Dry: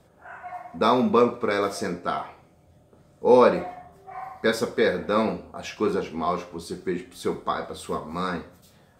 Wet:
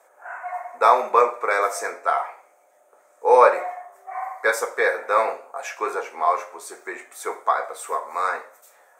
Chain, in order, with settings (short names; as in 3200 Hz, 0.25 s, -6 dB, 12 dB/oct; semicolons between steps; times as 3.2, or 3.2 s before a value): HPF 580 Hz 24 dB/oct; band shelf 3800 Hz -13 dB 1.1 oct; gain +7 dB